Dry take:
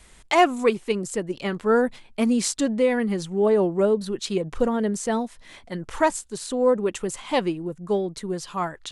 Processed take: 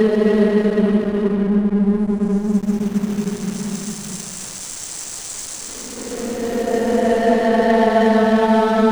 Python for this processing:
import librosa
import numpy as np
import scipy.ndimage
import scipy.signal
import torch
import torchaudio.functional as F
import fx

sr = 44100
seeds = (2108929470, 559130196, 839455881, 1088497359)

y = fx.paulstretch(x, sr, seeds[0], factor=31.0, window_s=0.1, from_s=4.85)
y = fx.backlash(y, sr, play_db=-26.5)
y = y * librosa.db_to_amplitude(8.0)